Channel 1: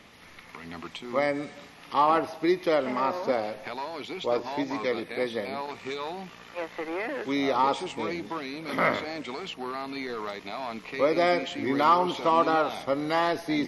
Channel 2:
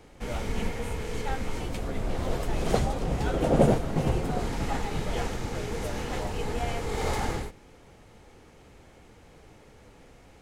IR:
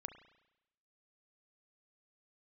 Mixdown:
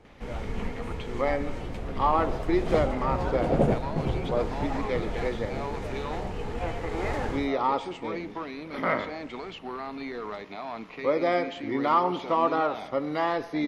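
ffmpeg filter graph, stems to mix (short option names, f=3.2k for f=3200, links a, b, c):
-filter_complex "[0:a]adelay=50,volume=-4.5dB,asplit=2[a][b];[b]volume=-1.5dB[c];[1:a]volume=-5.5dB,asplit=2[d][e];[e]volume=-1.5dB[f];[2:a]atrim=start_sample=2205[g];[c][f]amix=inputs=2:normalize=0[h];[h][g]afir=irnorm=-1:irlink=0[i];[a][d][i]amix=inputs=3:normalize=0,lowpass=f=2.3k:p=1"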